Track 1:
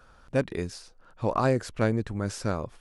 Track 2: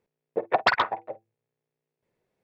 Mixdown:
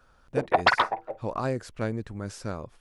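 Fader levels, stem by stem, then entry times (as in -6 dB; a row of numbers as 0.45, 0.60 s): -5.0, +1.0 dB; 0.00, 0.00 s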